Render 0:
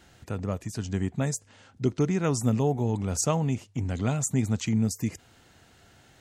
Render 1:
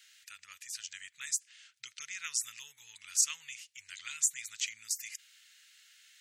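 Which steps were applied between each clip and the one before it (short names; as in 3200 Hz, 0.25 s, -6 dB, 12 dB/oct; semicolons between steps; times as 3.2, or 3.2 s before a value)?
inverse Chebyshev high-pass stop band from 760 Hz, stop band 50 dB; gain +2 dB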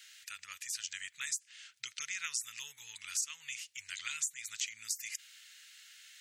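compressor 4:1, threshold -39 dBFS, peak gain reduction 14.5 dB; gain +4.5 dB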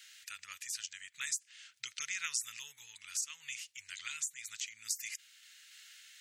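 random-step tremolo; gain +1 dB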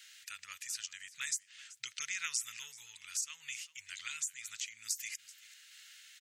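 echo 0.383 s -19.5 dB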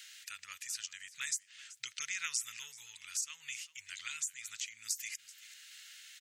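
mismatched tape noise reduction encoder only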